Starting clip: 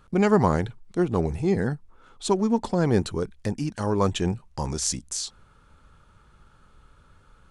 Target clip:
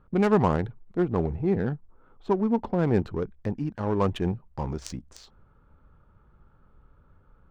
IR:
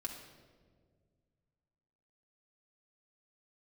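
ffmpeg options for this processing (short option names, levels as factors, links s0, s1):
-filter_complex "[0:a]asettb=1/sr,asplit=3[s0][s1][s2];[s0]atrim=end=1.364[s3];[s1]atrim=start=1.36:end=2.79,asetpts=PTS-STARTPTS,afade=t=in:d=0.004:c=qsin,afade=t=out:st=1.426:d=0.004:c=qsin,lowpass=f=3000:p=1[s4];[s2]atrim=start=2.786[s5];[s3][s4]acrossfade=d=0.004:c1=hsin:c2=qsin[s6];[s6][s5]acrossfade=d=0.004:c1=qsin:c2=hsin,acrusher=bits=8:mode=log:mix=0:aa=0.000001,adynamicsmooth=sensitivity=1.5:basefreq=1300,volume=0.841"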